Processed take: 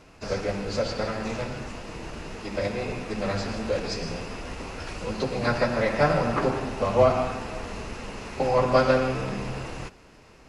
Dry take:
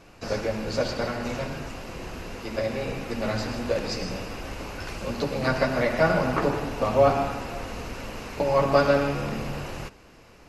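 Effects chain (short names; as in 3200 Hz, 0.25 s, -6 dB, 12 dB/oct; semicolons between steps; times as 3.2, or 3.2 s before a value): formant-preserving pitch shift -1.5 st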